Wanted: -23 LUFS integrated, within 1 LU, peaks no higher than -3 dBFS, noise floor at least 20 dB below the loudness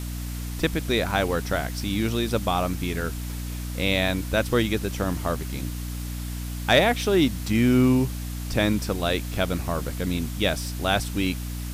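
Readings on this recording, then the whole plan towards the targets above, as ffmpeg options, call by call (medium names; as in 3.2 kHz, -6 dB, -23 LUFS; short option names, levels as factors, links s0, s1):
hum 60 Hz; highest harmonic 300 Hz; hum level -29 dBFS; noise floor -32 dBFS; noise floor target -45 dBFS; loudness -25.0 LUFS; peak level -8.0 dBFS; loudness target -23.0 LUFS
-> -af "bandreject=f=60:t=h:w=4,bandreject=f=120:t=h:w=4,bandreject=f=180:t=h:w=4,bandreject=f=240:t=h:w=4,bandreject=f=300:t=h:w=4"
-af "afftdn=nr=13:nf=-32"
-af "volume=1.26"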